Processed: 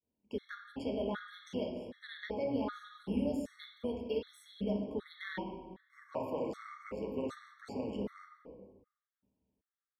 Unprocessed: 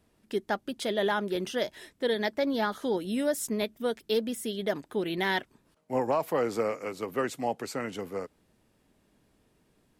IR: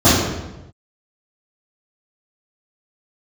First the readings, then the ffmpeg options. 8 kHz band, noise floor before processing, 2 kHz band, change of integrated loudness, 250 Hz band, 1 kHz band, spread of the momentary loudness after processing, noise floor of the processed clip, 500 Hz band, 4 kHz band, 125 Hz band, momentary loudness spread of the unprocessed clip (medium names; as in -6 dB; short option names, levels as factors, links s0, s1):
under -20 dB, -69 dBFS, -13.0 dB, -8.5 dB, -5.5 dB, -13.0 dB, 15 LU, under -85 dBFS, -9.5 dB, -14.0 dB, -4.0 dB, 7 LU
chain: -filter_complex "[0:a]aemphasis=mode=reproduction:type=75kf,agate=range=0.0224:threshold=0.00158:ratio=3:detection=peak,lowshelf=f=190:g=-6,bandreject=f=50:t=h:w=6,bandreject=f=100:t=h:w=6,acrossover=split=1400|3500[s0][s1][s2];[s0]acompressor=threshold=0.0178:ratio=4[s3];[s1]acompressor=threshold=0.0112:ratio=4[s4];[s2]acompressor=threshold=0.00316:ratio=4[s5];[s3][s4][s5]amix=inputs=3:normalize=0,tremolo=f=150:d=0.519,asplit=2[s6][s7];[1:a]atrim=start_sample=2205,asetrate=34398,aresample=44100[s8];[s7][s8]afir=irnorm=-1:irlink=0,volume=0.0398[s9];[s6][s9]amix=inputs=2:normalize=0,afftfilt=real='re*gt(sin(2*PI*1.3*pts/sr)*(1-2*mod(floor(b*sr/1024/1100),2)),0)':imag='im*gt(sin(2*PI*1.3*pts/sr)*(1-2*mod(floor(b*sr/1024/1100),2)),0)':win_size=1024:overlap=0.75,volume=0.668"